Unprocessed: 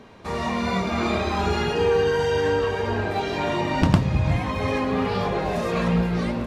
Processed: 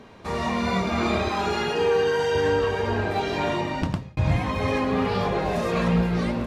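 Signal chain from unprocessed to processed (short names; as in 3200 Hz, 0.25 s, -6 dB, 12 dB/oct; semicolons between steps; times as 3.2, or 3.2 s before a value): 1.28–2.35 HPF 250 Hz 6 dB/oct; 3.46–4.17 fade out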